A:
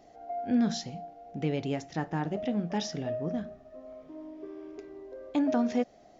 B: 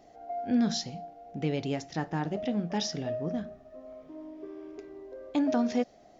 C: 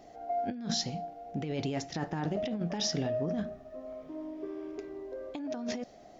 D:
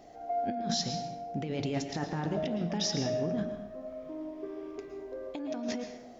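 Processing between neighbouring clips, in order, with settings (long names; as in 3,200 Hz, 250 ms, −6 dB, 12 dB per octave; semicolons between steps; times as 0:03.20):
dynamic equaliser 4,800 Hz, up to +5 dB, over −56 dBFS, Q 1.4
compressor whose output falls as the input rises −33 dBFS, ratio −1
dense smooth reverb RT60 0.9 s, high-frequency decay 0.7×, pre-delay 100 ms, DRR 6.5 dB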